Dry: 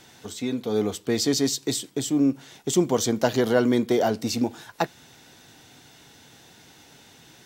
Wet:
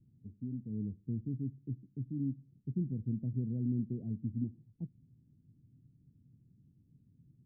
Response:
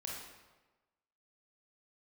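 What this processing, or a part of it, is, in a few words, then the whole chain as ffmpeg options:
the neighbour's flat through the wall: -filter_complex "[0:a]asettb=1/sr,asplit=3[link_01][link_02][link_03];[link_01]atrim=end=1.124[link_04];[link_02]atrim=start=1.12:end=3.06,asetpts=PTS-STARTPTS,afade=type=in:duration=0.004:curve=qsin,afade=type=out:start_time=1.936:duration=0.004:curve=qsin,equalizer=frequency=1000:width_type=o:width=0.77:gain=-7[link_05];[link_03]atrim=start=3.056[link_06];[link_04][link_05]acrossfade=duration=0.004:curve1=hsin:curve2=qsin[link_07];[link_07][link_06]acrossfade=duration=0.004:curve1=qsin:curve2=hsin,lowpass=frequency=210:width=0.5412,lowpass=frequency=210:width=1.3066,equalizer=frequency=120:width_type=o:width=0.55:gain=5,volume=-6dB"

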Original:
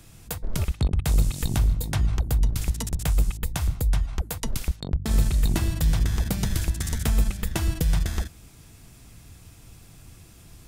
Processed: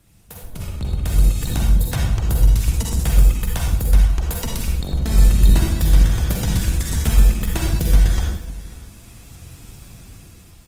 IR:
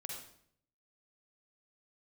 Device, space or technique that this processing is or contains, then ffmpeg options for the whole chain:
speakerphone in a meeting room: -filter_complex "[0:a]aecho=1:1:542:0.106[link_01];[1:a]atrim=start_sample=2205[link_02];[link_01][link_02]afir=irnorm=-1:irlink=0,dynaudnorm=framelen=180:gausssize=13:maxgain=12dB,volume=-1dB" -ar 48000 -c:a libopus -b:a 20k

